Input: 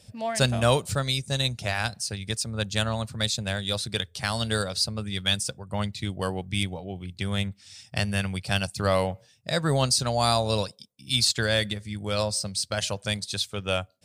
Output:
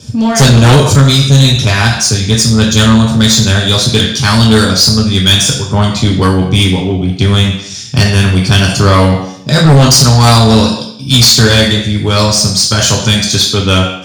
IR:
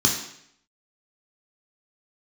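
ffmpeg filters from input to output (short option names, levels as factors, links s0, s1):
-filter_complex "[1:a]atrim=start_sample=2205[s0];[0:a][s0]afir=irnorm=-1:irlink=0,acontrast=66,volume=0.891"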